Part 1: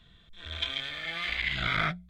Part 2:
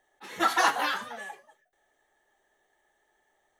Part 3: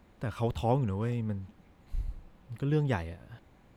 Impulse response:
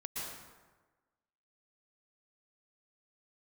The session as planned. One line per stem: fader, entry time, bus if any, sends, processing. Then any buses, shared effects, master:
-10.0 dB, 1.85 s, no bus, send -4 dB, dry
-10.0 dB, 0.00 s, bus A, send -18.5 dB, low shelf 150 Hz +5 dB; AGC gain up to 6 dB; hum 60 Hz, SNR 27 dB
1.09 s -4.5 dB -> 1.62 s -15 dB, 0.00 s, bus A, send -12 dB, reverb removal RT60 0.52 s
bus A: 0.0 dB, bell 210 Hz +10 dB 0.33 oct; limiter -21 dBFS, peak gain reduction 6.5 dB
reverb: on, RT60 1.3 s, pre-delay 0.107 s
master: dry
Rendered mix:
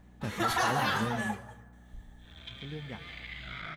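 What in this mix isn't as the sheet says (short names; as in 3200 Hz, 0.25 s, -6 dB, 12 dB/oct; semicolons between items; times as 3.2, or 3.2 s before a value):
stem 1 -10.0 dB -> -16.5 dB; stem 2 -10.0 dB -> -1.0 dB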